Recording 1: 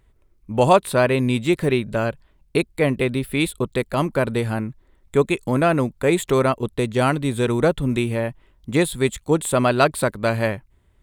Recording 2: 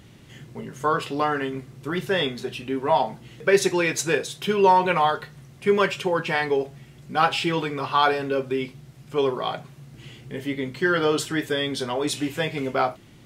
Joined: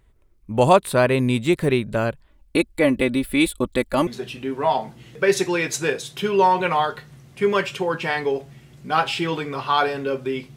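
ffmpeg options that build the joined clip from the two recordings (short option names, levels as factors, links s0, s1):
-filter_complex "[0:a]asettb=1/sr,asplit=3[s0][s1][s2];[s0]atrim=end=2.304[s3];[s1]atrim=start=2.3:end=4.07,asetpts=PTS-STARTPTS,afade=t=in:d=0.004:c=qsin,afade=t=out:st=1.766:d=0.004:c=qsin,aecho=1:1:3.5:0.64,atrim=end_sample=78057[s4];[s2]atrim=start=4.066[s5];[s3][s4]acrossfade=d=0.004:c1=hsin:c2=qsin[s6];[s6][s5]acrossfade=d=0.004:c1=qsin:c2=hsin,apad=whole_dur=10.56,atrim=end=10.56,atrim=end=4.072[s7];[1:a]atrim=start=2.318:end=8.81[s8];[s7][s8]acrossfade=d=0.004:c1=hsin:c2=hsin"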